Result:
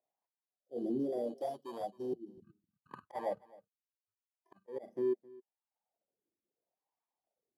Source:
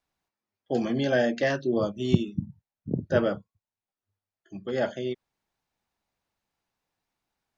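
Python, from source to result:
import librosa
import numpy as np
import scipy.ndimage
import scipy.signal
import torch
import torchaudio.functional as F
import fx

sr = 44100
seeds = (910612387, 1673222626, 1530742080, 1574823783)

p1 = fx.bit_reversed(x, sr, seeds[0], block=32)
p2 = fx.auto_swell(p1, sr, attack_ms=189.0)
p3 = fx.spec_box(p2, sr, start_s=0.46, length_s=1.98, low_hz=780.0, high_hz=2900.0, gain_db=-26)
p4 = fx.level_steps(p3, sr, step_db=17)
p5 = p3 + (p4 * 10.0 ** (1.0 / 20.0))
p6 = fx.dereverb_blind(p5, sr, rt60_s=0.75)
p7 = 10.0 ** (-21.0 / 20.0) * np.tanh(p6 / 10.0 ** (-21.0 / 20.0))
p8 = fx.wah_lfo(p7, sr, hz=0.75, low_hz=340.0, high_hz=1000.0, q=3.7)
p9 = p8 + fx.echo_single(p8, sr, ms=264, db=-22.0, dry=0)
y = p9 * 10.0 ** (1.0 / 20.0)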